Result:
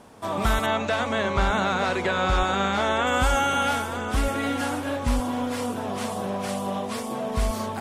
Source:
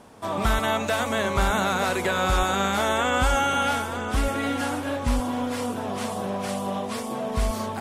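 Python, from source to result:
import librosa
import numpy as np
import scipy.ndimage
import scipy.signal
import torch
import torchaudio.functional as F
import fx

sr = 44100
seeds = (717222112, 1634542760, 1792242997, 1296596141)

y = fx.lowpass(x, sr, hz=5100.0, slope=12, at=(0.66, 3.07))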